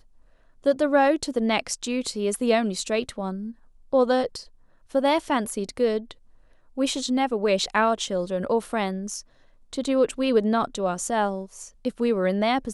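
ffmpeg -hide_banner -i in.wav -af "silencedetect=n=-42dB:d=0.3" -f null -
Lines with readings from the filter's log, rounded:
silence_start: 0.00
silence_end: 0.64 | silence_duration: 0.64
silence_start: 3.52
silence_end: 3.93 | silence_duration: 0.41
silence_start: 4.48
silence_end: 4.91 | silence_duration: 0.43
silence_start: 6.12
silence_end: 6.77 | silence_duration: 0.65
silence_start: 9.21
silence_end: 9.73 | silence_duration: 0.52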